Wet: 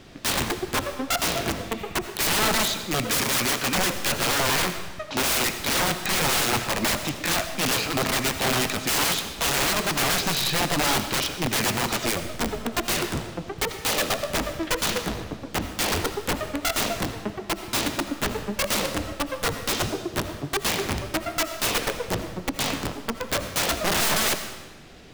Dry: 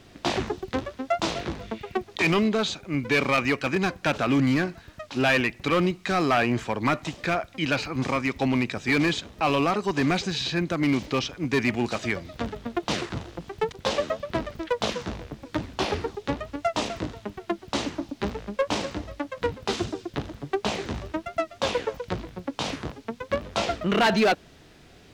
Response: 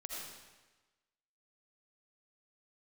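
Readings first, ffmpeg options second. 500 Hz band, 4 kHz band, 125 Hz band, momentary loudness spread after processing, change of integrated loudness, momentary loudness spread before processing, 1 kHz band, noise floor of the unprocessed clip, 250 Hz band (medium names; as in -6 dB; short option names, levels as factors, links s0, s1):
-2.0 dB, +7.0 dB, -1.0 dB, 8 LU, +2.5 dB, 11 LU, +1.0 dB, -52 dBFS, -3.5 dB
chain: -filter_complex "[0:a]flanger=delay=3.1:depth=8.3:regen=-56:speed=1.6:shape=triangular,aeval=exprs='(mod(20*val(0)+1,2)-1)/20':c=same,asplit=2[s0][s1];[1:a]atrim=start_sample=2205[s2];[s1][s2]afir=irnorm=-1:irlink=0,volume=0.668[s3];[s0][s3]amix=inputs=2:normalize=0,volume=1.88"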